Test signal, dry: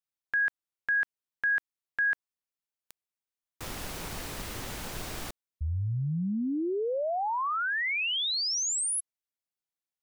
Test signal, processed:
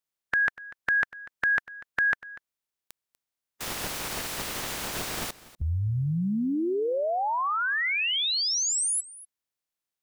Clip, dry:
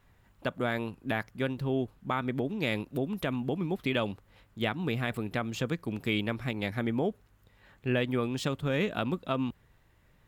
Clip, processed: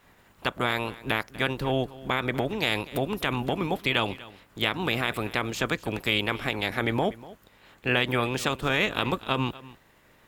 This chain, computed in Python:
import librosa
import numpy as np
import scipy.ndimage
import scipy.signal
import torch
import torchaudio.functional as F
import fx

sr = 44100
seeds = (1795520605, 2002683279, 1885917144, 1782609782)

y = fx.spec_clip(x, sr, under_db=16)
y = y + 10.0 ** (-19.0 / 20.0) * np.pad(y, (int(243 * sr / 1000.0), 0))[:len(y)]
y = F.gain(torch.from_numpy(y), 4.0).numpy()